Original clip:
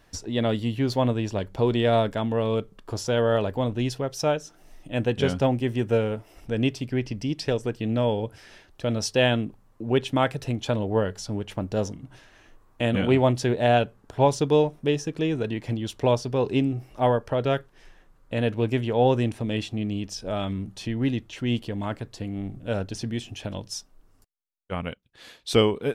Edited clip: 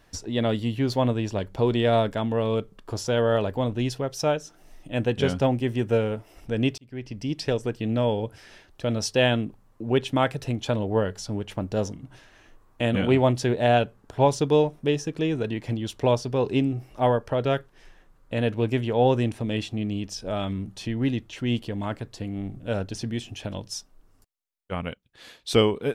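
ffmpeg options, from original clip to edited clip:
-filter_complex "[0:a]asplit=2[s0][s1];[s0]atrim=end=6.78,asetpts=PTS-STARTPTS,afade=t=out:st=6.776:d=0.004:c=hsin[s2];[s1]atrim=start=6.78,asetpts=PTS-STARTPTS,afade=t=in:d=0.57[s3];[s2][s3]concat=n=2:v=0:a=1"

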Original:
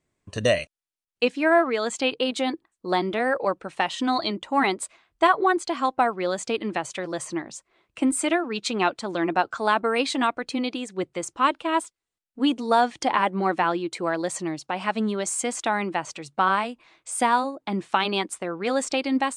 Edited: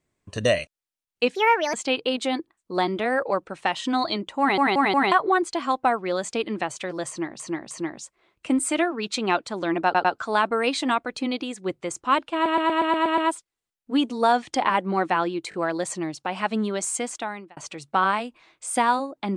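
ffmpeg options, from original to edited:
-filter_complex "[0:a]asplit=21[s0][s1][s2][s3][s4][s5][s6][s7][s8][s9][s10][s11][s12][s13][s14][s15][s16][s17][s18][s19][s20];[s0]atrim=end=1.354[s21];[s1]atrim=start=1.35:end=1.88,asetpts=PTS-STARTPTS,asetrate=60417,aresample=44100[s22];[s2]atrim=start=1.876:end=4.722[s23];[s3]atrim=start=4.538:end=4.722[s24];[s4]atrim=start=4.538:end=4.722[s25];[s5]atrim=start=4.538:end=4.722[s26];[s6]atrim=start=5.258:end=7.542[s27];[s7]atrim=start=7.228:end=7.542[s28];[s8]atrim=start=7.228:end=9.472[s29];[s9]atrim=start=9.368:end=9.472[s30];[s10]atrim=start=9.368:end=11.782[s31];[s11]atrim=start=11.658:end=11.782[s32];[s12]atrim=start=11.658:end=11.782[s33];[s13]atrim=start=11.658:end=11.782[s34];[s14]atrim=start=11.658:end=11.782[s35];[s15]atrim=start=11.658:end=11.782[s36];[s16]atrim=start=11.658:end=11.782[s37];[s17]atrim=start=11.658:end=14.002[s38];[s18]atrim=start=13.978:end=14.002[s39];[s19]atrim=start=13.978:end=16.01,asetpts=PTS-STARTPTS,afade=t=out:st=1.392:d=0.64[s40];[s20]atrim=start=16.01,asetpts=PTS-STARTPTS,afade=t=in:d=0.004:c=hsin[s41];[s21][s22]acrossfade=d=0.004:c1=hsin:c2=hsin[s42];[s42][s23]acrossfade=d=0.004:c1=hsin:c2=hsin[s43];[s43][s24]acrossfade=d=0.004:c1=hsin:c2=hsin[s44];[s44][s25]acrossfade=d=0.004:c1=hsin:c2=hsin[s45];[s45][s26]acrossfade=d=0.004:c1=hsin:c2=hsin[s46];[s46][s27]acrossfade=d=0.004:c1=hsin:c2=hsin[s47];[s47][s28]acrossfade=d=0.004:c1=hsin:c2=hsin[s48];[s48][s29]acrossfade=d=0.004:c1=hsin:c2=hsin[s49];[s49][s30]acrossfade=d=0.004:c1=hsin:c2=hsin[s50];[s50][s31]acrossfade=d=0.004:c1=hsin:c2=hsin[s51];[s51][s32]acrossfade=d=0.004:c1=hsin:c2=hsin[s52];[s52][s33]acrossfade=d=0.004:c1=hsin:c2=hsin[s53];[s53][s34]acrossfade=d=0.004:c1=hsin:c2=hsin[s54];[s54][s35]acrossfade=d=0.004:c1=hsin:c2=hsin[s55];[s55][s36]acrossfade=d=0.004:c1=hsin:c2=hsin[s56];[s56][s37]acrossfade=d=0.004:c1=hsin:c2=hsin[s57];[s57][s38]acrossfade=d=0.004:c1=hsin:c2=hsin[s58];[s58][s39]acrossfade=d=0.004:c1=hsin:c2=hsin[s59];[s40][s41]concat=n=2:v=0:a=1[s60];[s59][s60]acrossfade=d=0.004:c1=hsin:c2=hsin"

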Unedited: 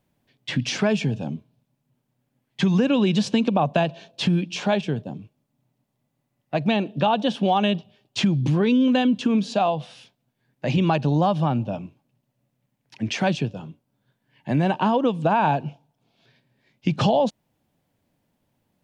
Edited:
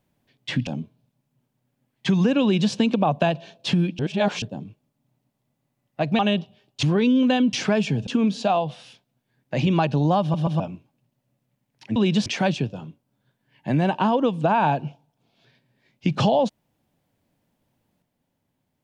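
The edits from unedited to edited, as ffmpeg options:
-filter_complex "[0:a]asplit=13[s0][s1][s2][s3][s4][s5][s6][s7][s8][s9][s10][s11][s12];[s0]atrim=end=0.672[s13];[s1]atrim=start=1.208:end=4.532[s14];[s2]atrim=start=4.528:end=4.962,asetpts=PTS-STARTPTS,areverse[s15];[s3]atrim=start=4.958:end=6.732[s16];[s4]atrim=start=7.558:end=8.202[s17];[s5]atrim=start=8.478:end=9.182[s18];[s6]atrim=start=0.668:end=1.212[s19];[s7]atrim=start=9.178:end=11.452[s20];[s8]atrim=start=11.318:end=11.452[s21];[s9]atrim=start=11.318:end=11.452[s22];[s10]atrim=start=11.708:end=13.072[s23];[s11]atrim=start=2.968:end=3.272[s24];[s12]atrim=start=13.068[s25];[s13][s14]acrossfade=d=0.004:c1=hsin:c2=hsin[s26];[s26][s15]acrossfade=d=0.004:c1=hsin:c2=hsin[s27];[s27][s16]acrossfade=d=0.004:c1=hsin:c2=hsin[s28];[s28][s17]acrossfade=d=0.004:c1=hsin:c2=hsin[s29];[s29][s18]acrossfade=d=0.004:c1=hsin:c2=hsin[s30];[s30][s19]acrossfade=d=0.004:c1=hsin:c2=hsin[s31];[s31][s20]acrossfade=d=0.004:c1=hsin:c2=hsin[s32];[s32][s21]acrossfade=d=0.004:c1=hsin:c2=hsin[s33];[s33][s22]acrossfade=d=0.004:c1=hsin:c2=hsin[s34];[s34][s23]acrossfade=d=0.004:c1=hsin:c2=hsin[s35];[s35][s24]acrossfade=d=0.004:c1=hsin:c2=hsin[s36];[s36][s25]acrossfade=d=0.004:c1=hsin:c2=hsin"

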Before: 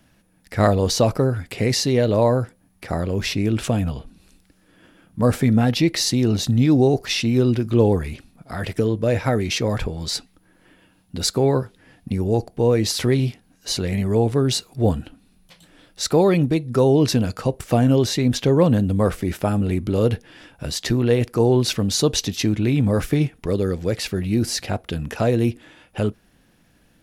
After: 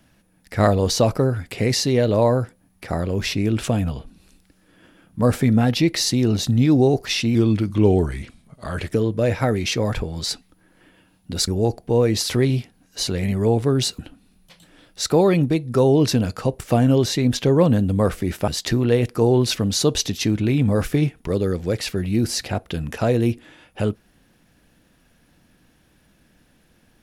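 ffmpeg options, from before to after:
-filter_complex "[0:a]asplit=6[s0][s1][s2][s3][s4][s5];[s0]atrim=end=7.354[s6];[s1]atrim=start=7.35:end=8.75,asetpts=PTS-STARTPTS,asetrate=39690,aresample=44100[s7];[s2]atrim=start=8.746:end=11.322[s8];[s3]atrim=start=12.168:end=14.682[s9];[s4]atrim=start=14.988:end=19.482[s10];[s5]atrim=start=20.658[s11];[s6][s7]acrossfade=d=0.004:c1=hsin:c2=hsin[s12];[s12][s8]acrossfade=d=0.004:c1=hsin:c2=hsin[s13];[s13][s9]acrossfade=d=0.004:c1=hsin:c2=hsin[s14];[s14][s10]acrossfade=d=0.004:c1=hsin:c2=hsin[s15];[s15][s11]acrossfade=d=0.004:c1=hsin:c2=hsin"

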